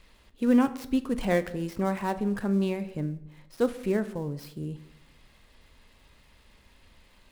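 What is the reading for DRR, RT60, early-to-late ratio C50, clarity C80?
11.0 dB, 0.80 s, 15.5 dB, 18.0 dB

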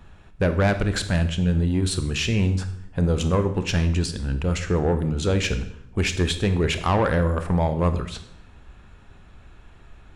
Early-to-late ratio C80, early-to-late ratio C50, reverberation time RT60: 14.5 dB, 11.5 dB, 0.75 s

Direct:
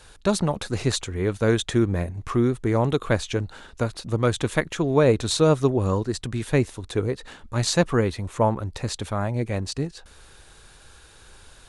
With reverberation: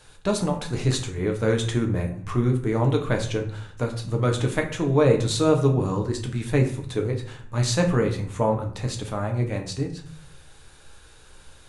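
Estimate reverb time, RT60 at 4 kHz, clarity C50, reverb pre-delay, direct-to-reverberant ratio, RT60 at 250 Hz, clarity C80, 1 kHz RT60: 0.55 s, 0.40 s, 9.5 dB, 7 ms, 2.0 dB, 0.85 s, 13.0 dB, 0.55 s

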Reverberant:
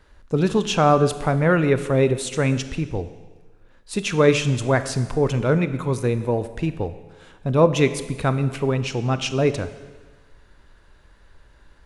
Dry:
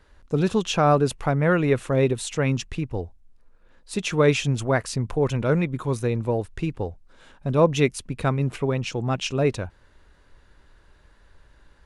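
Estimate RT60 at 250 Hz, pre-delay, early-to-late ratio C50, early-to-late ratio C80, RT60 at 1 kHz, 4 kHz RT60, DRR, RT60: 1.3 s, 23 ms, 12.5 dB, 14.0 dB, 1.3 s, 1.3 s, 11.0 dB, 1.3 s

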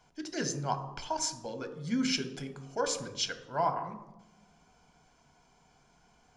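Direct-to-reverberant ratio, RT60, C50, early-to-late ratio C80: 8.0 dB, 0.95 s, 11.0 dB, 13.5 dB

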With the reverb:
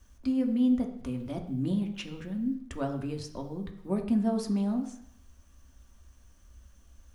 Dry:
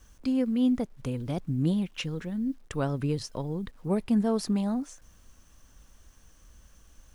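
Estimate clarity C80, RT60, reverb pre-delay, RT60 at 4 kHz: 12.0 dB, 0.70 s, 3 ms, 0.70 s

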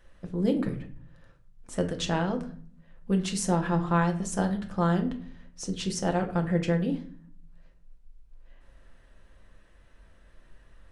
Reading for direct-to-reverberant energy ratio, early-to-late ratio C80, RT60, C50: 3.5 dB, 16.0 dB, 0.50 s, 11.5 dB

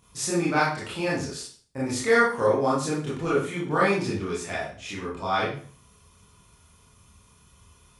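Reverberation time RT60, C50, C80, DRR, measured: 0.45 s, 3.0 dB, 8.5 dB, -7.5 dB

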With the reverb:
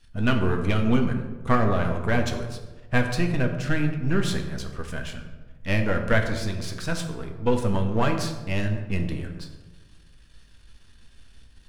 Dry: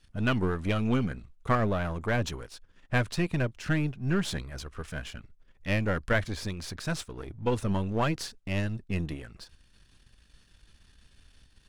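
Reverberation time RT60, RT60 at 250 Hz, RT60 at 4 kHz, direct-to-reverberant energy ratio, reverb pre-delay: 1.3 s, 1.5 s, 0.70 s, 3.5 dB, 4 ms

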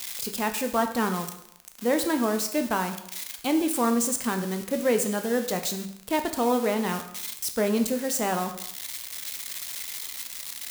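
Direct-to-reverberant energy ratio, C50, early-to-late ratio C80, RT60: 6.0 dB, 10.0 dB, 12.0 dB, 0.75 s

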